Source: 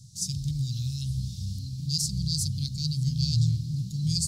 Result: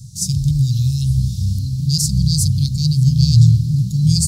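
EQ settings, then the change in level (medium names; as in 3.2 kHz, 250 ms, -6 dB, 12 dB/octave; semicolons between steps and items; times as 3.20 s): elliptic band-stop 480–2200 Hz; bass shelf 340 Hz +10 dB; treble shelf 7.4 kHz +9 dB; +5.5 dB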